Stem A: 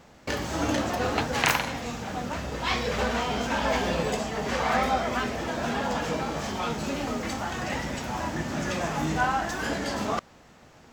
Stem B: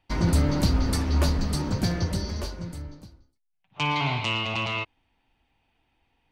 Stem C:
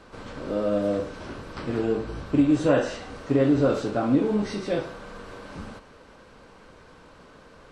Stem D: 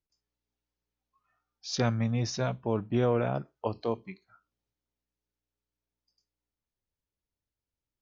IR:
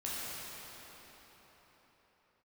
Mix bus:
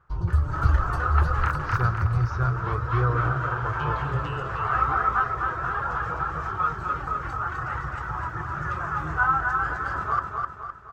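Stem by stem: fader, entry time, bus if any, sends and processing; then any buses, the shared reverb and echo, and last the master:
-5.5 dB, 0.00 s, no send, echo send -4 dB, reverb removal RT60 0.64 s; level rider gain up to 7 dB; auto duck -7 dB, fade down 0.30 s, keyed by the fourth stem
-0.5 dB, 0.00 s, send -13 dB, no echo send, high-order bell 1.6 kHz -16 dB 1.1 oct; reverb removal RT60 1.5 s
-9.0 dB, 0.75 s, no send, no echo send, none
+1.5 dB, 0.00 s, send -10 dB, no echo send, none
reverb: on, pre-delay 10 ms
echo: feedback delay 256 ms, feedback 45%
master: FFT filter 130 Hz 0 dB, 240 Hz -27 dB, 370 Hz -9 dB, 600 Hz -17 dB, 920 Hz -7 dB, 1.3 kHz +8 dB, 2.1 kHz -15 dB, 3.6 kHz -22 dB, 7.1 kHz -25 dB; level rider gain up to 3.5 dB

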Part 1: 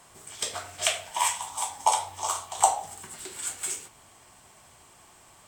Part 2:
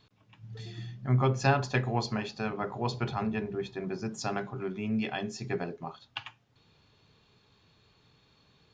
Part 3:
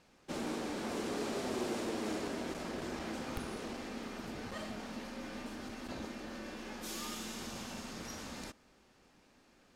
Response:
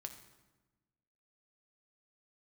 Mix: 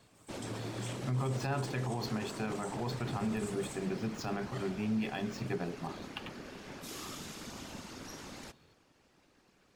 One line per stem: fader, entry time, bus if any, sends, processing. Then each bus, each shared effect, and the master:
-16.5 dB, 0.00 s, bus A, no send, none
-3.0 dB, 0.00 s, no bus, no send, median filter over 5 samples; peaking EQ 180 Hz +3.5 dB 1.6 oct
-2.0 dB, 0.00 s, bus A, no send, none
bus A: 0.0 dB, whisper effect; peak limiter -32.5 dBFS, peak gain reduction 10.5 dB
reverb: none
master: peak limiter -26 dBFS, peak gain reduction 11.5 dB

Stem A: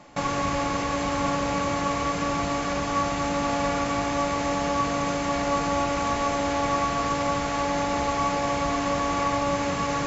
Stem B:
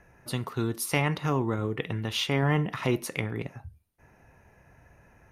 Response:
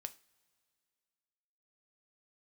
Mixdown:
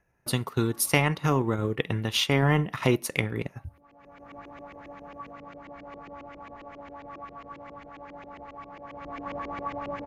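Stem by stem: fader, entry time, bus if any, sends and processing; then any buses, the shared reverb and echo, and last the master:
8.83 s -21.5 dB -> 9.29 s -13 dB, 0.40 s, no send, treble shelf 4.3 kHz +8.5 dB; LFO low-pass saw up 7.4 Hz 330–2800 Hz; auto duck -20 dB, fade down 1.80 s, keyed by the second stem
+2.0 dB, 0.00 s, no send, gate -52 dBFS, range -16 dB; treble shelf 5.8 kHz +4 dB; transient shaper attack +3 dB, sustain -7 dB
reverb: none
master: none

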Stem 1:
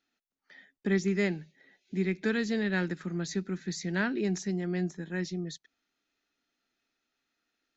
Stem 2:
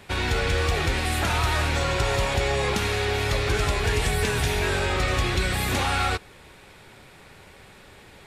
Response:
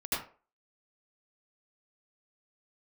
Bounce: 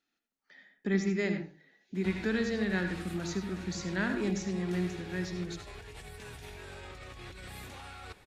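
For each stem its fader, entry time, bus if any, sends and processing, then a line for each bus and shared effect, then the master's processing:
-4.0 dB, 0.00 s, send -10 dB, none
-16.0 dB, 1.95 s, no send, compressor with a negative ratio -30 dBFS, ratio -1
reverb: on, RT60 0.40 s, pre-delay 71 ms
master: none

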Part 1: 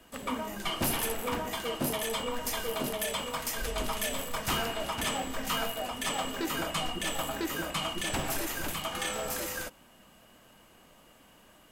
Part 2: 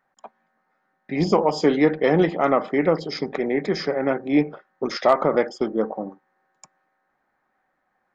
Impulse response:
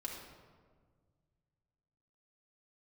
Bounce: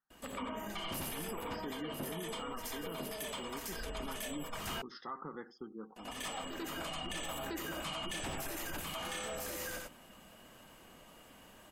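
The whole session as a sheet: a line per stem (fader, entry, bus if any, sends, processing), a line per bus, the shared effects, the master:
0.0 dB, 0.10 s, muted 4.73–5.96 s, no send, echo send -8 dB, gate with hold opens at -49 dBFS; auto duck -16 dB, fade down 1.75 s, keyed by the second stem
-19.0 dB, 0.00 s, no send, echo send -20.5 dB, static phaser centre 2.3 kHz, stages 6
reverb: none
echo: delay 89 ms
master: spectral gate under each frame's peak -30 dB strong; peak limiter -32 dBFS, peak gain reduction 11 dB

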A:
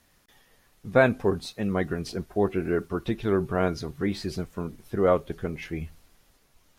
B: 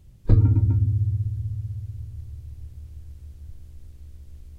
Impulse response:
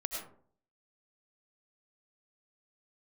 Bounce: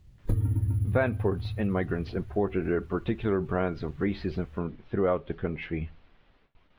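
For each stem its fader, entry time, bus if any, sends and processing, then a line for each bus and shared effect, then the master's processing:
+1.0 dB, 0.00 s, no send, gate with hold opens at -52 dBFS; inverse Chebyshev low-pass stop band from 9.7 kHz, stop band 60 dB
-4.5 dB, 0.00 s, no send, sample-and-hold 4×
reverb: none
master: compression 3:1, threshold -23 dBFS, peak gain reduction 8.5 dB

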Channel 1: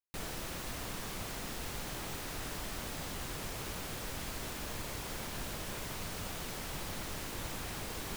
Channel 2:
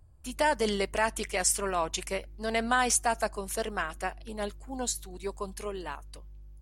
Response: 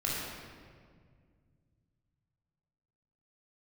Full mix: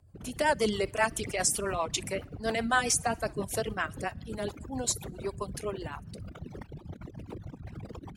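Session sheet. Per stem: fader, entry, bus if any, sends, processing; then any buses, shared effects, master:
+2.0 dB, 0.00 s, send -22 dB, no echo send, resonances exaggerated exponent 3; level rider gain up to 4 dB
+2.5 dB, 0.00 s, send -24 dB, echo send -16.5 dB, none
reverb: on, RT60 1.9 s, pre-delay 19 ms
echo: feedback delay 61 ms, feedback 47%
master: high-pass 81 Hz 12 dB/octave; rotary cabinet horn 7.5 Hz; reverb removal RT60 0.82 s

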